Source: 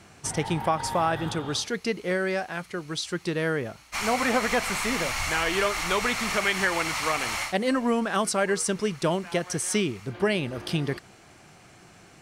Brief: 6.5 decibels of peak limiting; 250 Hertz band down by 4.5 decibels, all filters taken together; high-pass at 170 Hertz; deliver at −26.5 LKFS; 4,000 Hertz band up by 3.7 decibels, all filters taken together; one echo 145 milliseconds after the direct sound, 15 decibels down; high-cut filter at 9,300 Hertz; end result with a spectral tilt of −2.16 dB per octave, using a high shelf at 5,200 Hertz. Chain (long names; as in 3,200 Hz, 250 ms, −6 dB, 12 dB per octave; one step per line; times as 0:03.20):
high-pass filter 170 Hz
low-pass filter 9,300 Hz
parametric band 250 Hz −4.5 dB
parametric band 4,000 Hz +3.5 dB
high-shelf EQ 5,200 Hz +3.5 dB
brickwall limiter −15.5 dBFS
single-tap delay 145 ms −15 dB
level +0.5 dB